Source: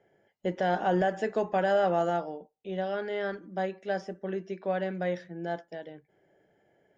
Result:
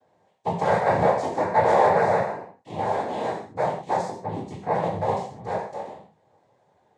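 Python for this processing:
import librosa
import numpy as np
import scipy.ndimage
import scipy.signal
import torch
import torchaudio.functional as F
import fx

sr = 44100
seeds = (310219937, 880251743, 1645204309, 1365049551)

y = fx.fixed_phaser(x, sr, hz=770.0, stages=4)
y = fx.noise_vocoder(y, sr, seeds[0], bands=6)
y = fx.rev_gated(y, sr, seeds[1], gate_ms=190, shape='falling', drr_db=-2.5)
y = F.gain(torch.from_numpy(y), 4.5).numpy()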